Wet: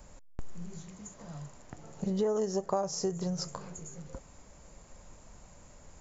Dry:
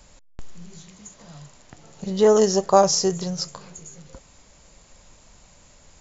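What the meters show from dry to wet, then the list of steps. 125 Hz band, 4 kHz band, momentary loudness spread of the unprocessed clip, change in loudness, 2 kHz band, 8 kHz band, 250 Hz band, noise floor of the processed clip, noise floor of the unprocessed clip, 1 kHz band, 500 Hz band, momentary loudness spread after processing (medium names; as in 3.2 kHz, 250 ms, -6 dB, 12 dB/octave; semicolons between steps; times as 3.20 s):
-6.0 dB, -15.0 dB, 15 LU, -15.5 dB, -14.0 dB, no reading, -8.5 dB, -55 dBFS, -53 dBFS, -15.5 dB, -13.5 dB, 20 LU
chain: peaking EQ 3.8 kHz -10.5 dB 1.8 oct; compression 5:1, threshold -29 dBFS, peak gain reduction 16 dB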